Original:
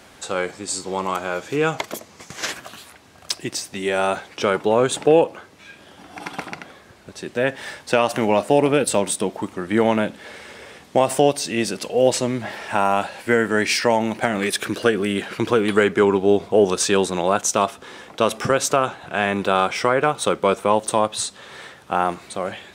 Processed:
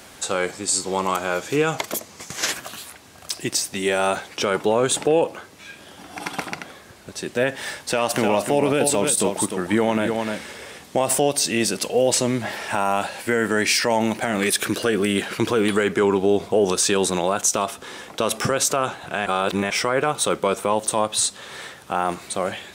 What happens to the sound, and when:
7.6–10.52 echo 0.301 s -8.5 dB
19.26–19.7 reverse
whole clip: high shelf 5800 Hz +8.5 dB; limiter -10.5 dBFS; gain +1.5 dB

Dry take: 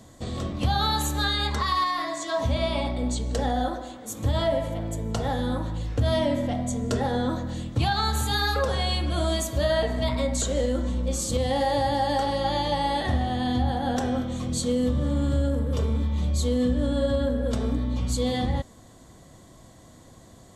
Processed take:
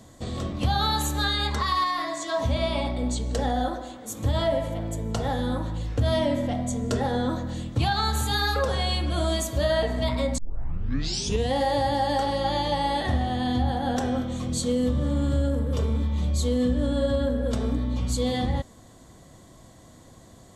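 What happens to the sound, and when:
10.38 tape start 1.13 s

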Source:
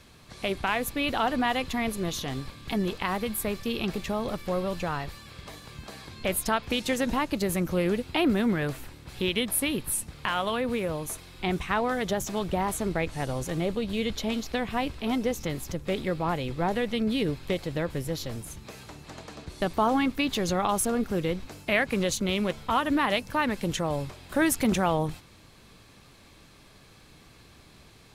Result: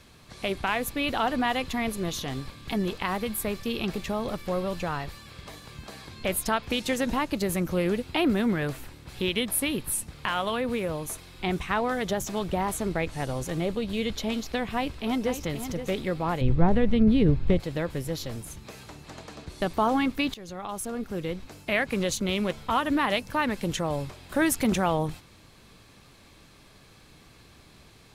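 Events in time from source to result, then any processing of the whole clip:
14.71–15.43 echo throw 0.52 s, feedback 15%, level -9.5 dB
16.41–17.6 RIAA curve playback
20.34–22.54 fade in equal-power, from -17.5 dB

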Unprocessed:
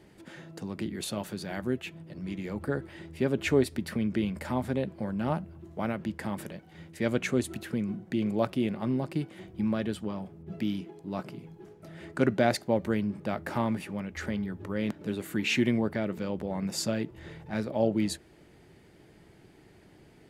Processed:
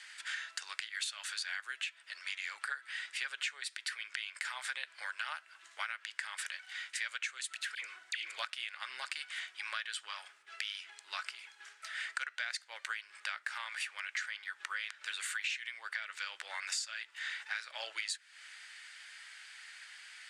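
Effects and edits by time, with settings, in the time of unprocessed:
7.75–8.38 dispersion lows, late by 81 ms, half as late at 1100 Hz
whole clip: elliptic band-pass 1500–8900 Hz, stop band 70 dB; compressor 10:1, threshold -51 dBFS; gain +15.5 dB

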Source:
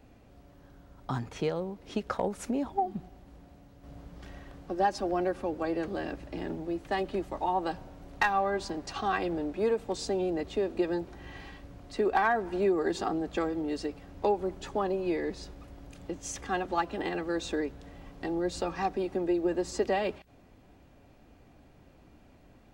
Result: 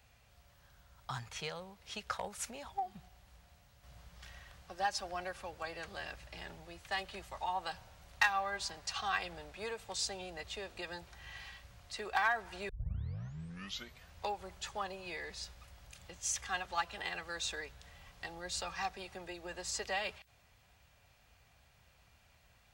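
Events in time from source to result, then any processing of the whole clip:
12.69 tape start 1.45 s
whole clip: HPF 62 Hz; passive tone stack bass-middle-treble 10-0-10; gain +4 dB

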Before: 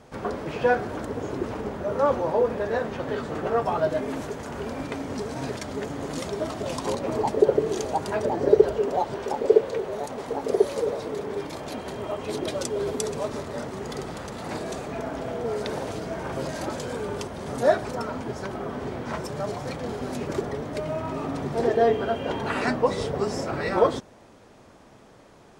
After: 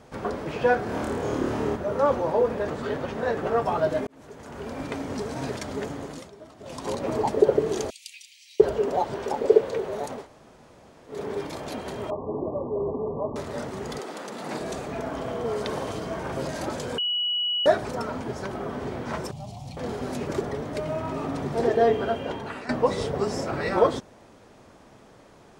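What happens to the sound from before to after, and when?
0.84–1.76 flutter echo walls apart 4.6 m, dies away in 0.77 s
2.68–3.37 reverse
4.07–4.92 fade in
5.85–7.04 dip -17 dB, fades 0.46 s
7.9–8.6 steep high-pass 2300 Hz 72 dB/oct
10.21–11.14 room tone, crossfade 0.16 s
12.1–13.36 brick-wall FIR low-pass 1200 Hz
13.98–14.59 HPF 300 Hz -> 130 Hz 24 dB/oct
15.11–16.19 small resonant body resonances 1100/3100 Hz, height 10 dB
16.98–17.66 bleep 2930 Hz -23 dBFS
19.31–19.77 EQ curve 120 Hz 0 dB, 230 Hz -8 dB, 460 Hz -25 dB, 750 Hz -5 dB, 1600 Hz -29 dB, 2700 Hz -6 dB
22.09–22.69 fade out, to -16 dB

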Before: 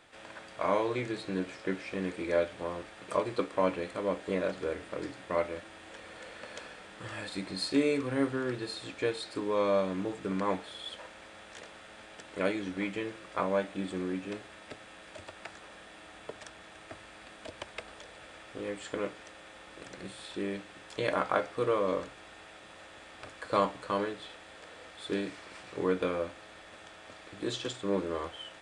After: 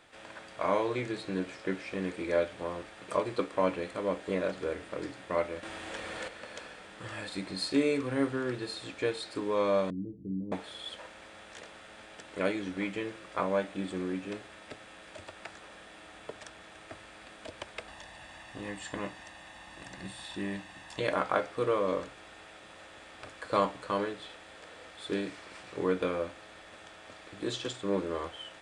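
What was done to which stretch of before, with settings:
5.63–6.28 gain +8 dB
9.9–10.52 inverse Chebyshev low-pass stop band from 1300 Hz, stop band 70 dB
17.88–21 comb 1.1 ms

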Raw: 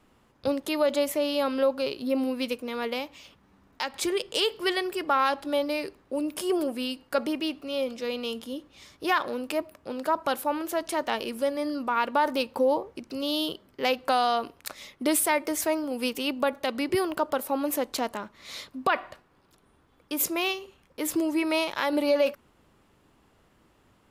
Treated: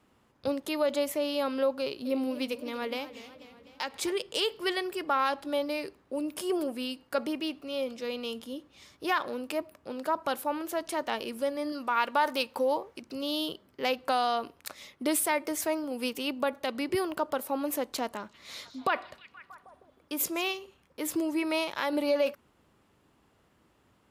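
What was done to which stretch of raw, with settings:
1.81–4.12 warbling echo 0.247 s, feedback 62%, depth 168 cents, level -15 dB
11.72–13.02 tilt shelf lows -4.5 dB, about 630 Hz
18.02–20.57 delay with a stepping band-pass 0.158 s, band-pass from 5000 Hz, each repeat -0.7 oct, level -11 dB
whole clip: HPF 50 Hz; gain -3.5 dB

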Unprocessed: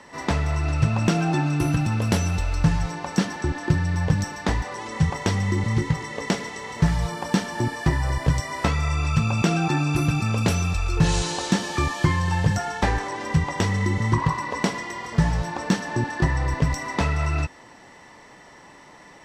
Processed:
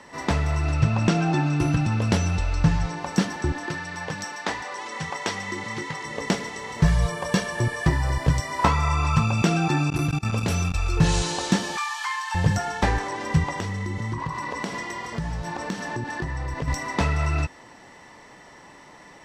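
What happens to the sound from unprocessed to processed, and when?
0.76–2.98 LPF 7400 Hz
3.66–6.05 weighting filter A
6.84–7.87 comb 1.8 ms
8.59–9.26 bell 1000 Hz +11 dB 0.64 oct
9.9–10.74 level quantiser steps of 23 dB
11.77–12.35 steep high-pass 810 Hz 72 dB/oct
13.5–16.68 compressor 4:1, threshold -26 dBFS

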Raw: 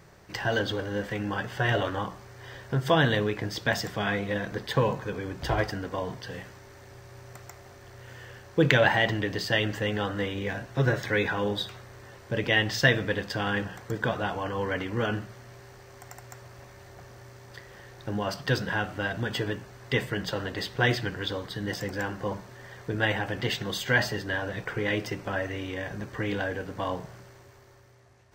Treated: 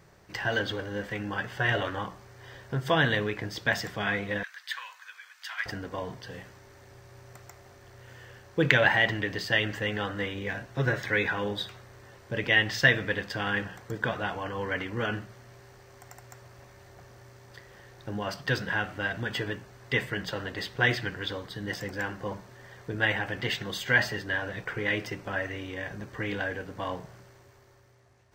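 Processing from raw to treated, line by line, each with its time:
4.43–5.66 inverse Chebyshev high-pass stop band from 230 Hz, stop band 80 dB
whole clip: dynamic EQ 2000 Hz, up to +6 dB, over -40 dBFS, Q 1.1; gain -3.5 dB

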